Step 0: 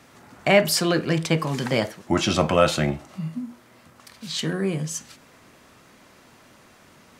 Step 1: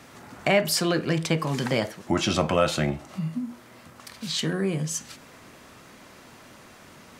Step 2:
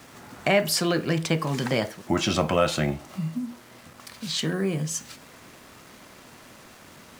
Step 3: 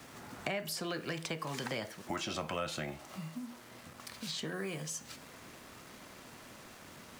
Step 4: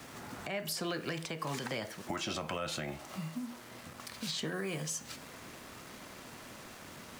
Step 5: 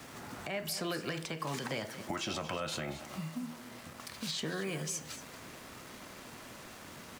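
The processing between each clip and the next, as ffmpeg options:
-af "acompressor=threshold=-34dB:ratio=1.5,volume=3.5dB"
-af "acrusher=bits=7:mix=0:aa=0.5"
-filter_complex "[0:a]acrossover=split=410|1000[a][b][c];[a]acompressor=threshold=-40dB:ratio=4[d];[b]acompressor=threshold=-39dB:ratio=4[e];[c]acompressor=threshold=-35dB:ratio=4[f];[d][e][f]amix=inputs=3:normalize=0,volume=-4dB"
-af "alimiter=level_in=5dB:limit=-24dB:level=0:latency=1:release=142,volume=-5dB,volume=3dB"
-af "aecho=1:1:230:0.224"

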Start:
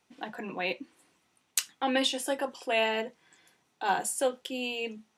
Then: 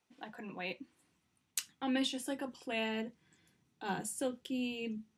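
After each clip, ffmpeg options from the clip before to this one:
-af "asubboost=boost=8.5:cutoff=240,volume=-8.5dB"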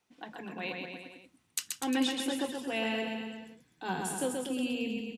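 -af "aecho=1:1:130|247|352.3|447.1|532.4:0.631|0.398|0.251|0.158|0.1,volume=2.5dB"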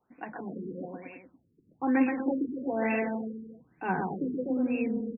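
-af "afftfilt=real='re*lt(b*sr/1024,460*pow(2800/460,0.5+0.5*sin(2*PI*1.1*pts/sr)))':imag='im*lt(b*sr/1024,460*pow(2800/460,0.5+0.5*sin(2*PI*1.1*pts/sr)))':win_size=1024:overlap=0.75,volume=5dB"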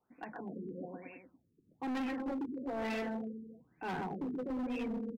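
-af "asoftclip=type=hard:threshold=-29dB,volume=-5dB"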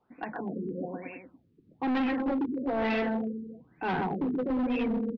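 -af "lowpass=f=4.1k:w=0.5412,lowpass=f=4.1k:w=1.3066,volume=8.5dB"

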